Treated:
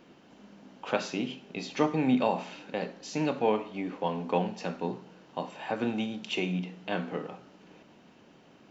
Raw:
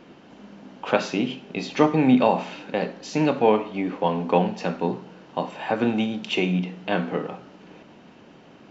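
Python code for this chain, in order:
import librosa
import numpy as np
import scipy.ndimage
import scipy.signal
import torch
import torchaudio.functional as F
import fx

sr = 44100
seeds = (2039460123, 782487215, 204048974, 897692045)

y = fx.high_shelf(x, sr, hz=6600.0, db=9.5)
y = y * librosa.db_to_amplitude(-8.0)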